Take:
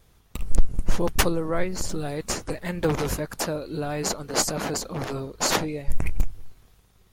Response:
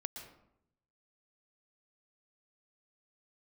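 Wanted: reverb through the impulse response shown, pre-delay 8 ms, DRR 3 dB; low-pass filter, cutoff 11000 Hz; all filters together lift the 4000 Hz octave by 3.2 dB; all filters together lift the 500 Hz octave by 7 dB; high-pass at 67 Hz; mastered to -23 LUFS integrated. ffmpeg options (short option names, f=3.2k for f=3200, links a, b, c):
-filter_complex "[0:a]highpass=67,lowpass=11k,equalizer=f=500:t=o:g=8,equalizer=f=4k:t=o:g=4,asplit=2[a][b];[1:a]atrim=start_sample=2205,adelay=8[c];[b][c]afir=irnorm=-1:irlink=0,volume=-1.5dB[d];[a][d]amix=inputs=2:normalize=0,volume=-0.5dB"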